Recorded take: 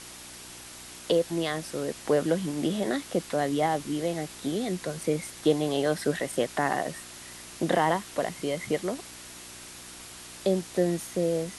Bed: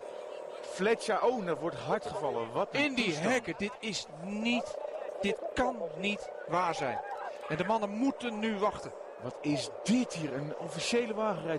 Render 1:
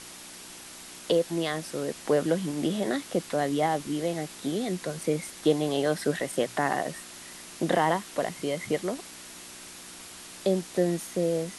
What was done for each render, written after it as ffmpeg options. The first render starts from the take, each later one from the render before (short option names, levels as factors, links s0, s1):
-af "bandreject=f=60:t=h:w=4,bandreject=f=120:t=h:w=4"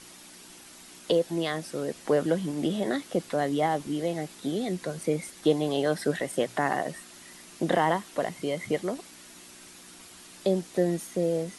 -af "afftdn=nr=6:nf=-45"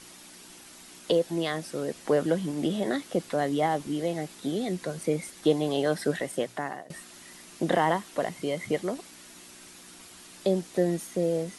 -filter_complex "[0:a]asplit=2[s0][s1];[s0]atrim=end=6.9,asetpts=PTS-STARTPTS,afade=t=out:st=5.96:d=0.94:c=qsin:silence=0.0794328[s2];[s1]atrim=start=6.9,asetpts=PTS-STARTPTS,afade=t=in:d=0.004:c=hsin:silence=0.0794328[s3];[s2][s3]concat=n=2:v=0:a=1"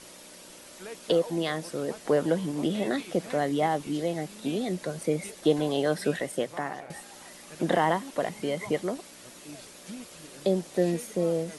-filter_complex "[1:a]volume=0.2[s0];[0:a][s0]amix=inputs=2:normalize=0"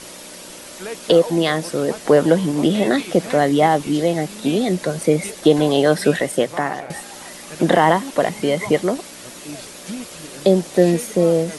-af "volume=3.55,alimiter=limit=0.794:level=0:latency=1"